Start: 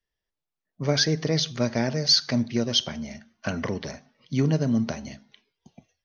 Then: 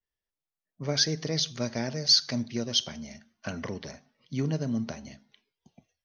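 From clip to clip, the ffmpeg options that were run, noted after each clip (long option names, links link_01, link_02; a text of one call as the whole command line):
ffmpeg -i in.wav -af "adynamicequalizer=threshold=0.0141:dfrequency=3300:dqfactor=0.7:tfrequency=3300:tqfactor=0.7:attack=5:release=100:ratio=0.375:range=3.5:mode=boostabove:tftype=highshelf,volume=-6.5dB" out.wav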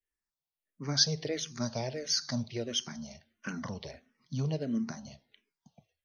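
ffmpeg -i in.wav -filter_complex "[0:a]asplit=2[link_01][link_02];[link_02]afreqshift=-1.5[link_03];[link_01][link_03]amix=inputs=2:normalize=1" out.wav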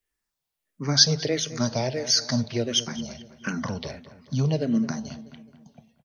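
ffmpeg -i in.wav -filter_complex "[0:a]asplit=2[link_01][link_02];[link_02]adelay=214,lowpass=frequency=3100:poles=1,volume=-15dB,asplit=2[link_03][link_04];[link_04]adelay=214,lowpass=frequency=3100:poles=1,volume=0.51,asplit=2[link_05][link_06];[link_06]adelay=214,lowpass=frequency=3100:poles=1,volume=0.51,asplit=2[link_07][link_08];[link_08]adelay=214,lowpass=frequency=3100:poles=1,volume=0.51,asplit=2[link_09][link_10];[link_10]adelay=214,lowpass=frequency=3100:poles=1,volume=0.51[link_11];[link_01][link_03][link_05][link_07][link_09][link_11]amix=inputs=6:normalize=0,volume=8.5dB" out.wav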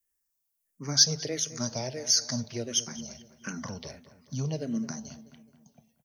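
ffmpeg -i in.wav -af "aexciter=amount=4:drive=4.4:freq=5500,volume=-8dB" out.wav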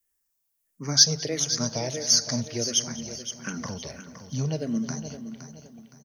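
ffmpeg -i in.wav -af "aecho=1:1:516|1032|1548|2064:0.282|0.093|0.0307|0.0101,volume=3.5dB" out.wav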